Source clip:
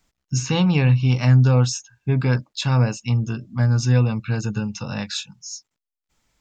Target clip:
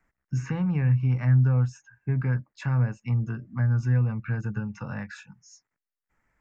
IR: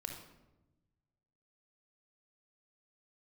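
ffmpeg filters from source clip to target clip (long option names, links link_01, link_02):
-filter_complex "[0:a]highshelf=frequency=2600:width_type=q:width=3:gain=-12,acrossover=split=180[link_01][link_02];[link_02]acompressor=threshold=-33dB:ratio=3[link_03];[link_01][link_03]amix=inputs=2:normalize=0,volume=-4dB"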